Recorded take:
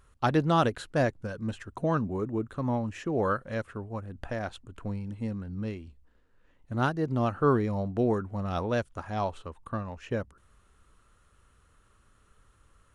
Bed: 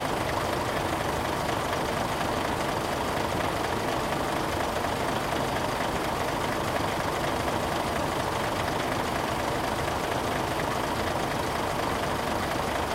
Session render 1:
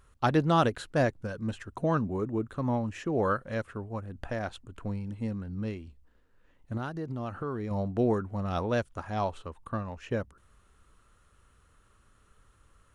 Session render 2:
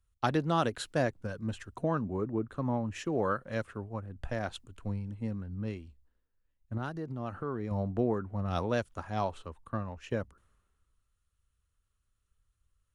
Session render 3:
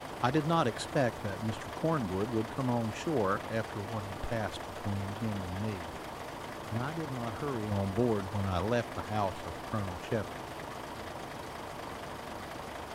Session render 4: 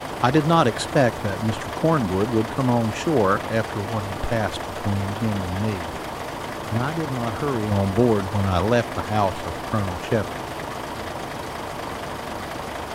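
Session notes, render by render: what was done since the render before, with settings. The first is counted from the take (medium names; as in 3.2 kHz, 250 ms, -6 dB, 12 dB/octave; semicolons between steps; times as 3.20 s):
6.77–7.71 s: compression 4:1, threshold -32 dBFS
compression 3:1, threshold -29 dBFS, peak gain reduction 8 dB; three bands expanded up and down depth 70%
add bed -13.5 dB
trim +11 dB; peak limiter -3 dBFS, peak gain reduction 1.5 dB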